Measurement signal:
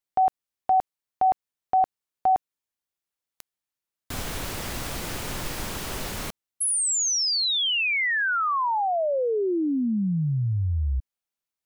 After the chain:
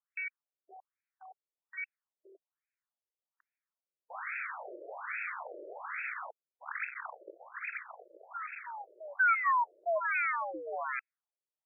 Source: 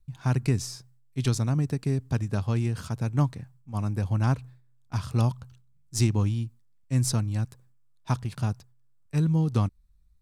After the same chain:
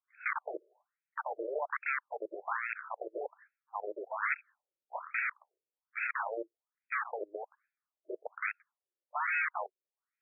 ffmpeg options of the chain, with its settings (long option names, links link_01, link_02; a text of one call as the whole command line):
ffmpeg -i in.wav -af "aeval=exprs='(mod(13.3*val(0)+1,2)-1)/13.3':channel_layout=same,crystalizer=i=10:c=0,afftfilt=real='re*between(b*sr/1024,430*pow(1900/430,0.5+0.5*sin(2*PI*1.2*pts/sr))/1.41,430*pow(1900/430,0.5+0.5*sin(2*PI*1.2*pts/sr))*1.41)':imag='im*between(b*sr/1024,430*pow(1900/430,0.5+0.5*sin(2*PI*1.2*pts/sr))/1.41,430*pow(1900/430,0.5+0.5*sin(2*PI*1.2*pts/sr))*1.41)':win_size=1024:overlap=0.75,volume=-5dB" out.wav